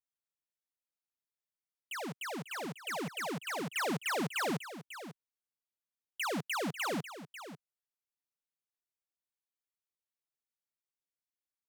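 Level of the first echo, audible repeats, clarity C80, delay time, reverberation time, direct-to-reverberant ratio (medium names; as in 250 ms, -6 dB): -12.5 dB, 1, no reverb, 545 ms, no reverb, no reverb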